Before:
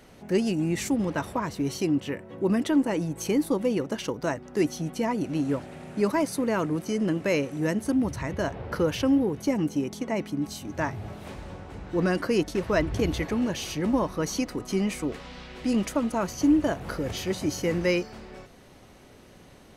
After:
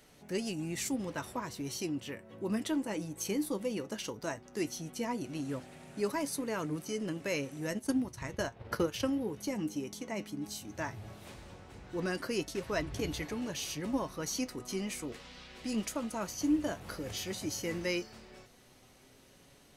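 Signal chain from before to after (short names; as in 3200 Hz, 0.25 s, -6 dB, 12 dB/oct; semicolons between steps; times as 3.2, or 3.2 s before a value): high shelf 2800 Hz +9.5 dB; 7.7–9.1 transient shaper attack +7 dB, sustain -10 dB; flange 0.15 Hz, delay 6.7 ms, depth 3.4 ms, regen +67%; gain -6 dB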